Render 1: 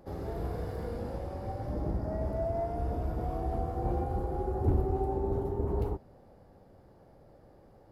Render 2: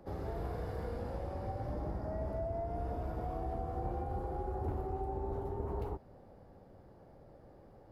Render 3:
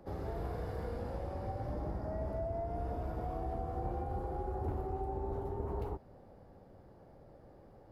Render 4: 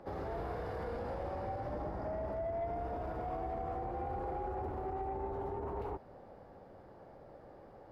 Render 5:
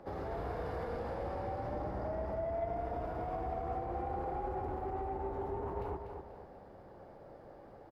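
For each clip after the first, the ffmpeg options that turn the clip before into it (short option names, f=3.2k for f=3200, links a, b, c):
-filter_complex "[0:a]highshelf=f=4.1k:g=-6,acrossover=split=120|570[a][b][c];[a]acompressor=threshold=-39dB:ratio=4[d];[b]acompressor=threshold=-44dB:ratio=4[e];[c]acompressor=threshold=-41dB:ratio=4[f];[d][e][f]amix=inputs=3:normalize=0"
-af anull
-filter_complex "[0:a]alimiter=level_in=8.5dB:limit=-24dB:level=0:latency=1:release=30,volume=-8.5dB,asplit=2[a][b];[b]highpass=f=720:p=1,volume=10dB,asoftclip=type=tanh:threshold=-32dB[c];[a][c]amix=inputs=2:normalize=0,lowpass=f=2.3k:p=1,volume=-6dB,volume=2.5dB"
-af "aecho=1:1:244|488|732|976|1220:0.447|0.183|0.0751|0.0308|0.0126"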